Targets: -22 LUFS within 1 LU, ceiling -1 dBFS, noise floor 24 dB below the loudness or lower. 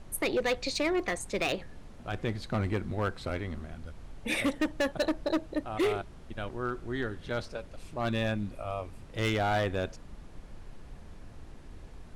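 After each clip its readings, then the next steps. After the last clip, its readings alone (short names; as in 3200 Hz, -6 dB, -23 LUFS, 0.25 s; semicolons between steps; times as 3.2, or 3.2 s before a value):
clipped 1.6%; flat tops at -23.0 dBFS; noise floor -49 dBFS; noise floor target -57 dBFS; loudness -32.5 LUFS; peak -23.0 dBFS; loudness target -22.0 LUFS
-> clip repair -23 dBFS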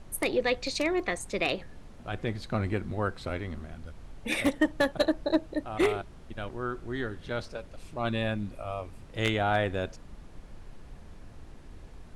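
clipped 0.0%; noise floor -49 dBFS; noise floor target -55 dBFS
-> noise print and reduce 6 dB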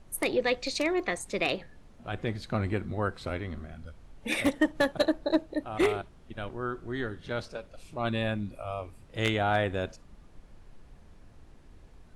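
noise floor -54 dBFS; noise floor target -55 dBFS
-> noise print and reduce 6 dB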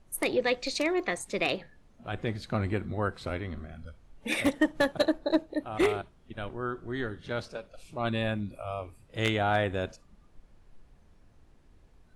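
noise floor -59 dBFS; loudness -31.0 LUFS; peak -14.0 dBFS; loudness target -22.0 LUFS
-> gain +9 dB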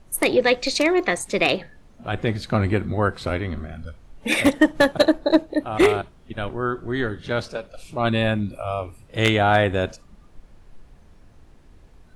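loudness -22.0 LUFS; peak -5.0 dBFS; noise floor -50 dBFS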